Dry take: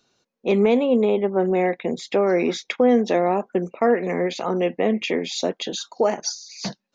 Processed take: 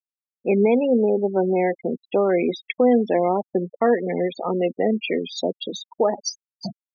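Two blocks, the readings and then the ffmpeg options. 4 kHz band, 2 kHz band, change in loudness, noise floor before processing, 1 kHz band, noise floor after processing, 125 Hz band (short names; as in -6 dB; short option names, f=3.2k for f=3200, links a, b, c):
-3.5 dB, -2.5 dB, 0.0 dB, -74 dBFS, -0.5 dB, under -85 dBFS, 0.0 dB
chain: -af "afftfilt=real='re*gte(hypot(re,im),0.0891)':imag='im*gte(hypot(re,im),0.0891)':win_size=1024:overlap=0.75"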